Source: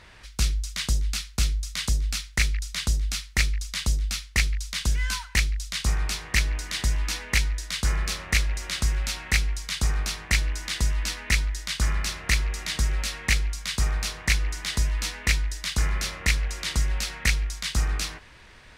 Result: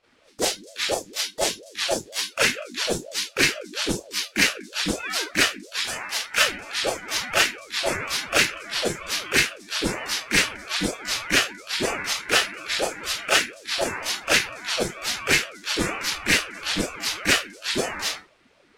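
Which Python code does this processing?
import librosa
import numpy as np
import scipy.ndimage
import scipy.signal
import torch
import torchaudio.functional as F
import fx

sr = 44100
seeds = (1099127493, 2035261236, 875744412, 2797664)

y = fx.low_shelf(x, sr, hz=220.0, db=-10.5, at=(5.81, 6.38))
y = fx.rev_schroeder(y, sr, rt60_s=0.31, comb_ms=26, drr_db=-9.5)
y = fx.noise_reduce_blind(y, sr, reduce_db=16)
y = fx.ring_lfo(y, sr, carrier_hz=430.0, swing_pct=45, hz=4.2)
y = y * librosa.db_to_amplitude(-1.0)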